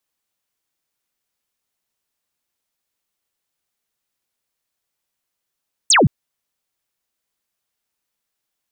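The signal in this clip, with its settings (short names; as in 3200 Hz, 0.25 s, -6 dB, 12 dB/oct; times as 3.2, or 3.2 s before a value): laser zap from 8900 Hz, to 100 Hz, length 0.17 s sine, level -9 dB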